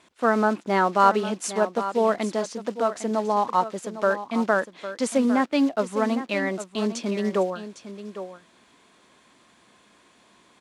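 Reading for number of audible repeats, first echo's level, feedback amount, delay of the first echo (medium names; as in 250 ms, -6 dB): 1, -12.0 dB, no regular repeats, 806 ms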